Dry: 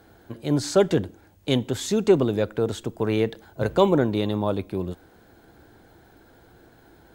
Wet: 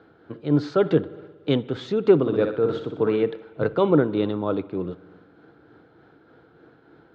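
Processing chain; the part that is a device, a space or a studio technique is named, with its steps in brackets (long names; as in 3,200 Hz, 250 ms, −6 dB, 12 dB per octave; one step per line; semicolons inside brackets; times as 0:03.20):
0:02.18–0:03.23: flutter between parallel walls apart 10.4 metres, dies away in 0.62 s
combo amplifier with spring reverb and tremolo (spring reverb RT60 1.6 s, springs 57 ms, chirp 25 ms, DRR 17 dB; amplitude tremolo 3.3 Hz, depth 32%; loudspeaker in its box 99–4,000 Hz, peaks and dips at 150 Hz +8 dB, 300 Hz +7 dB, 460 Hz +8 dB, 1,300 Hz +10 dB)
level −3 dB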